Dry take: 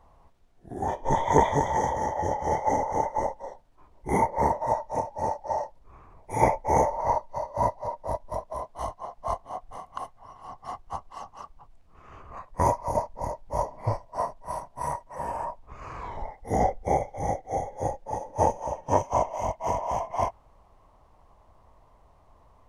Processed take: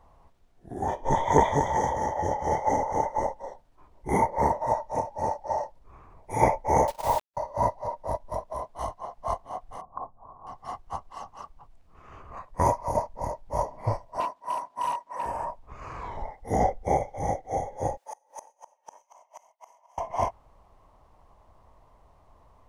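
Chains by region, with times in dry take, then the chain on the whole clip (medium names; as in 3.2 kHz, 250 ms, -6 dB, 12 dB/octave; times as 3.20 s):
6.87–7.37 s: word length cut 6-bit, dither none + gate -30 dBFS, range -43 dB
9.81–10.47 s: steep low-pass 1.2 kHz + hum notches 50/100/150/200/250/300 Hz
14.20–15.26 s: frequency weighting A + overload inside the chain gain 29.5 dB + small resonant body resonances 270/1000 Hz, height 8 dB, ringing for 25 ms
17.97–19.98 s: high-pass 890 Hz + treble shelf 6.3 kHz +11.5 dB + inverted gate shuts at -27 dBFS, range -28 dB
whole clip: none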